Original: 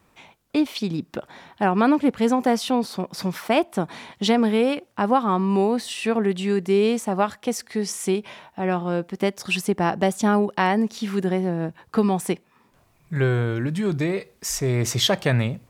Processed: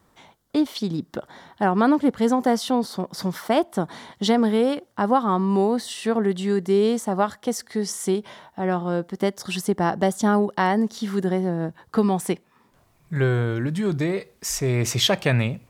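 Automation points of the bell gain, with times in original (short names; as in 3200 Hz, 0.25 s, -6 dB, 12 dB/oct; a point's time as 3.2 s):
bell 2500 Hz 0.25 oct
11.67 s -13.5 dB
12.26 s -4 dB
14.15 s -4 dB
14.84 s +5.5 dB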